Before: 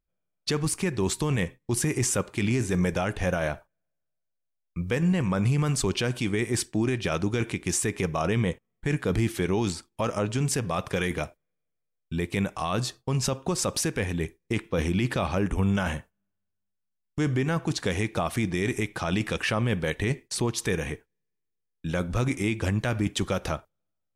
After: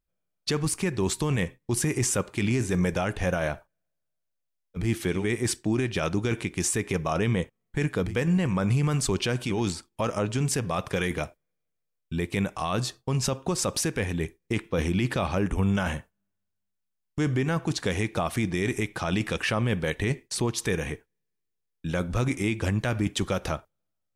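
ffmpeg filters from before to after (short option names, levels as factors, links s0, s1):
-filter_complex "[0:a]asplit=5[s0][s1][s2][s3][s4];[s0]atrim=end=4.9,asetpts=PTS-STARTPTS[s5];[s1]atrim=start=9.08:end=9.61,asetpts=PTS-STARTPTS[s6];[s2]atrim=start=6.2:end=9.24,asetpts=PTS-STARTPTS[s7];[s3]atrim=start=4.74:end=6.36,asetpts=PTS-STARTPTS[s8];[s4]atrim=start=9.45,asetpts=PTS-STARTPTS[s9];[s5][s6]acrossfade=d=0.16:c1=tri:c2=tri[s10];[s10][s7]acrossfade=d=0.16:c1=tri:c2=tri[s11];[s11][s8]acrossfade=d=0.16:c1=tri:c2=tri[s12];[s12][s9]acrossfade=d=0.16:c1=tri:c2=tri"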